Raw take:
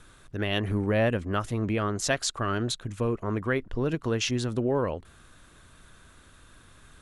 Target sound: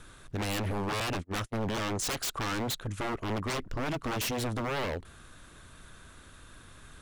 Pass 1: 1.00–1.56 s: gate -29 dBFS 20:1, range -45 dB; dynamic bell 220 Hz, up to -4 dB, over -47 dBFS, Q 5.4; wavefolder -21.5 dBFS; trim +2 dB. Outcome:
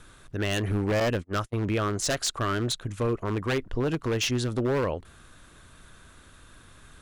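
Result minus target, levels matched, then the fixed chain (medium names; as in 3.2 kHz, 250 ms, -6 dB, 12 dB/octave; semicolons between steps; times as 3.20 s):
wavefolder: distortion -18 dB
1.00–1.56 s: gate -29 dBFS 20:1, range -45 dB; dynamic bell 220 Hz, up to -4 dB, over -47 dBFS, Q 5.4; wavefolder -29 dBFS; trim +2 dB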